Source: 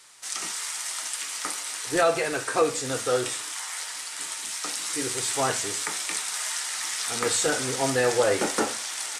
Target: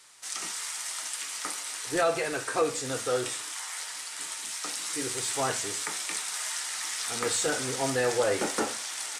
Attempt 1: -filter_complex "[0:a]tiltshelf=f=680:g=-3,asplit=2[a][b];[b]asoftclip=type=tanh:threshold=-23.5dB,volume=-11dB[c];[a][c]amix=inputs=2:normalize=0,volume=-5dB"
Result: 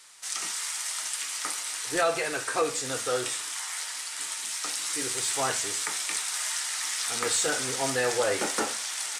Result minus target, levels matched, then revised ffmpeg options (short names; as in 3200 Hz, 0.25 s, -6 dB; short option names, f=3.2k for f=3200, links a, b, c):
500 Hz band -2.5 dB
-filter_complex "[0:a]asplit=2[a][b];[b]asoftclip=type=tanh:threshold=-23.5dB,volume=-11dB[c];[a][c]amix=inputs=2:normalize=0,volume=-5dB"